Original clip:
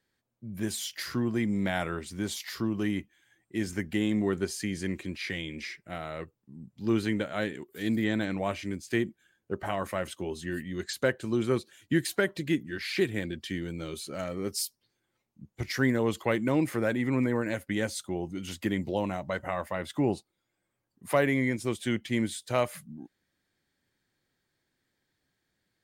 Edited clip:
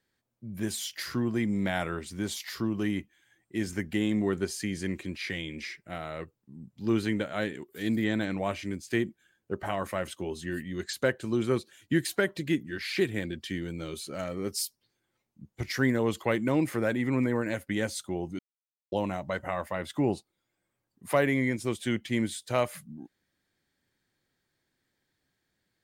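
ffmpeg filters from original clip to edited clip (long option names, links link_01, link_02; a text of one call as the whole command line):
ffmpeg -i in.wav -filter_complex "[0:a]asplit=3[link_01][link_02][link_03];[link_01]atrim=end=18.39,asetpts=PTS-STARTPTS,afade=type=out:start_time=18.386:duration=0.004:curve=hsin[link_04];[link_02]atrim=start=18.39:end=18.92,asetpts=PTS-STARTPTS,volume=0[link_05];[link_03]atrim=start=18.92,asetpts=PTS-STARTPTS,afade=type=in:duration=0.004:curve=hsin[link_06];[link_04][link_05][link_06]concat=n=3:v=0:a=1" out.wav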